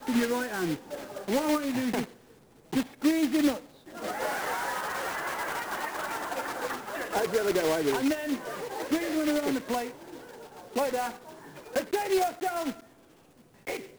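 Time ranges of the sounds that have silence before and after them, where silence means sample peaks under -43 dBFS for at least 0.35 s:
2.73–12.80 s

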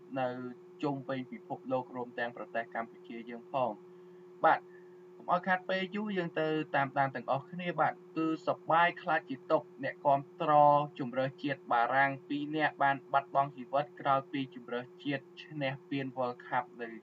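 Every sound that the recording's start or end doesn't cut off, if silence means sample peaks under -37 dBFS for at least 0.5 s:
4.43–4.58 s

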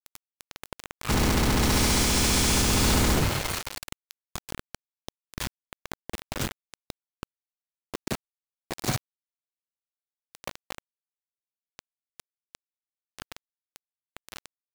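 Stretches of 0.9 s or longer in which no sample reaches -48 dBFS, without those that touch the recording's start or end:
8.98–10.35 s
10.78–11.79 s

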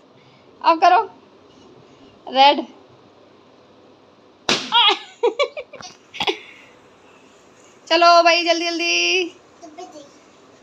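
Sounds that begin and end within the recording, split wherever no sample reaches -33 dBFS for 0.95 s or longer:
2.27–2.71 s
4.48–6.57 s

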